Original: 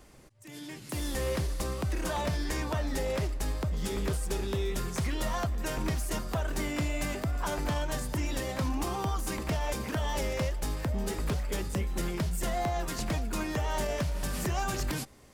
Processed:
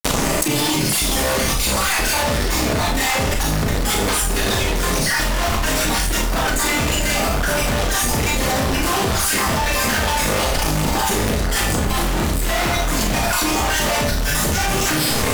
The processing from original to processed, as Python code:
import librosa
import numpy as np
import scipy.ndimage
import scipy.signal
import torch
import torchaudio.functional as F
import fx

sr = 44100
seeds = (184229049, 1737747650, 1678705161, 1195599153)

y = fx.spec_dropout(x, sr, seeds[0], share_pct=37)
y = fx.cheby_harmonics(y, sr, harmonics=(8,), levels_db=(-19,), full_scale_db=-21.0)
y = fx.fuzz(y, sr, gain_db=55.0, gate_db=-54.0)
y = fx.rev_schroeder(y, sr, rt60_s=0.44, comb_ms=26, drr_db=-2.0)
y = fx.env_flatten(y, sr, amount_pct=100)
y = y * librosa.db_to_amplitude(-12.0)